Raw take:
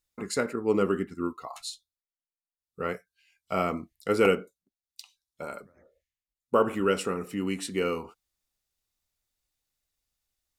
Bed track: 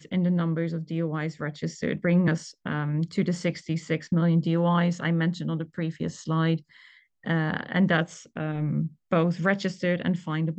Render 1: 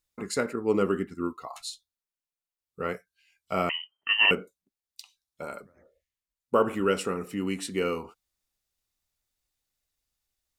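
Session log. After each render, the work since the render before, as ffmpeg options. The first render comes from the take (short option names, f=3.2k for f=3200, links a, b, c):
-filter_complex "[0:a]asettb=1/sr,asplit=3[a][b][c];[a]atrim=end=3.694[d];[b]atrim=start=3.69:end=4.31,asetpts=PTS-STARTPTS,afade=t=in:d=0.004:c=qsin,afade=t=out:st=0.616:d=0.004:c=qsin,lowpass=f=2.7k:t=q:w=0.5098,lowpass=f=2.7k:t=q:w=0.6013,lowpass=f=2.7k:t=q:w=0.9,lowpass=f=2.7k:t=q:w=2.563,afreqshift=-3200[e];[c]atrim=start=4.306[f];[d][e]acrossfade=d=0.004:c1=hsin:c2=qsin[g];[g][f]acrossfade=d=0.004:c1=qsin:c2=hsin"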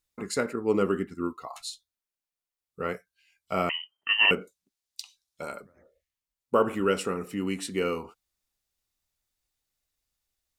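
-filter_complex "[0:a]asettb=1/sr,asplit=3[a][b][c];[a]atrim=end=4.414[d];[b]atrim=start=4.41:end=5.52,asetpts=PTS-STARTPTS,afade=t=in:d=0.004:c=qsin,afade=t=out:st=1.106:d=0.004:c=qsin,equalizer=f=5.7k:w=0.51:g=7[e];[c]atrim=start=5.516[f];[d][e]acrossfade=d=0.004:c1=hsin:c2=qsin[g];[g][f]acrossfade=d=0.004:c1=qsin:c2=hsin"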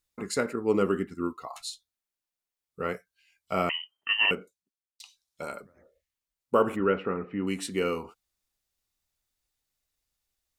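-filter_complex "[0:a]asplit=3[a][b][c];[a]afade=t=out:st=6.75:d=0.02[d];[b]lowpass=f=2.3k:w=0.5412,lowpass=f=2.3k:w=1.3066,afade=t=in:st=6.75:d=0.02,afade=t=out:st=7.46:d=0.02[e];[c]afade=t=in:st=7.46:d=0.02[f];[d][e][f]amix=inputs=3:normalize=0,asplit=2[g][h];[g]atrim=end=5,asetpts=PTS-STARTPTS,afade=t=out:st=3.93:d=1.07[i];[h]atrim=start=5,asetpts=PTS-STARTPTS,afade=t=in:d=0.004:c=hsin[j];[i][j]concat=n=2:v=0:a=1"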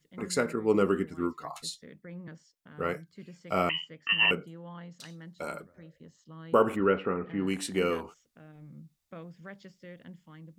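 -filter_complex "[1:a]volume=-22dB[a];[0:a][a]amix=inputs=2:normalize=0"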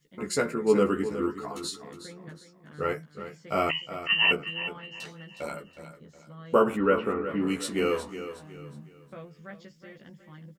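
-filter_complex "[0:a]asplit=2[a][b];[b]adelay=14,volume=-3dB[c];[a][c]amix=inputs=2:normalize=0,asplit=2[d][e];[e]aecho=0:1:365|730|1095|1460:0.266|0.0931|0.0326|0.0114[f];[d][f]amix=inputs=2:normalize=0"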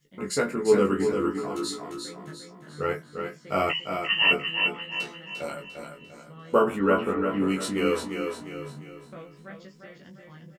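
-filter_complex "[0:a]asplit=2[a][b];[b]adelay=21,volume=-6.5dB[c];[a][c]amix=inputs=2:normalize=0,asplit=2[d][e];[e]aecho=0:1:348|696|1044|1392|1740:0.473|0.189|0.0757|0.0303|0.0121[f];[d][f]amix=inputs=2:normalize=0"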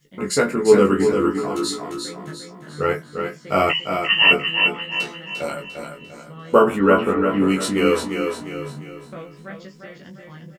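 -af "volume=7dB"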